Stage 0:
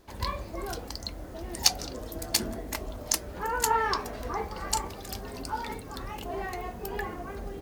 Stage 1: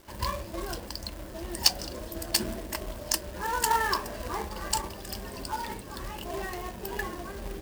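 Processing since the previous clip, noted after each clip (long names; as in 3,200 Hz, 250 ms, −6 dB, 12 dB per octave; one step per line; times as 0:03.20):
EQ curve with evenly spaced ripples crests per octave 1.3, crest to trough 7 dB
log-companded quantiser 4 bits
level −1 dB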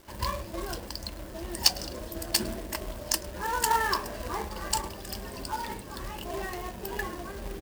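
single-tap delay 105 ms −22.5 dB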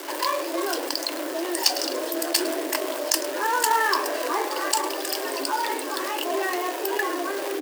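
Chebyshev high-pass filter 270 Hz, order 10
envelope flattener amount 50%
level +1.5 dB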